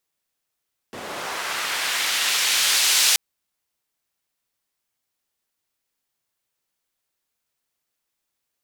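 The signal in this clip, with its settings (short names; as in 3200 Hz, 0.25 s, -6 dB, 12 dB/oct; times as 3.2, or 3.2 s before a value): swept filtered noise white, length 2.23 s bandpass, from 310 Hz, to 4300 Hz, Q 0.77, linear, gain ramp +9 dB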